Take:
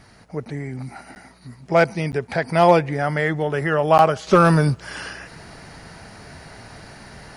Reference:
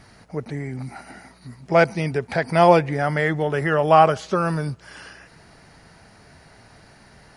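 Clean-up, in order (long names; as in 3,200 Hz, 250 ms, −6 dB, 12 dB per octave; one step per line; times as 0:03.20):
clipped peaks rebuilt −4.5 dBFS
repair the gap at 0:01.15/0:02.12/0:03.98, 9.8 ms
level correction −8.5 dB, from 0:04.27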